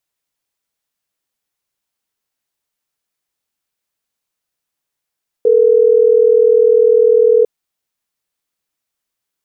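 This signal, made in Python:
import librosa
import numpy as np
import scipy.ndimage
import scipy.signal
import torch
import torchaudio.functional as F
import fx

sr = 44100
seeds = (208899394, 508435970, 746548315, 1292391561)

y = fx.call_progress(sr, length_s=3.12, kind='ringback tone', level_db=-9.5)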